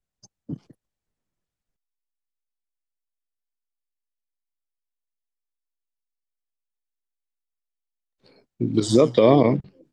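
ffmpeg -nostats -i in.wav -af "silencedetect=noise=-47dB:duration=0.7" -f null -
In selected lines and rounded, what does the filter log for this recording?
silence_start: 0.72
silence_end: 8.26 | silence_duration: 7.55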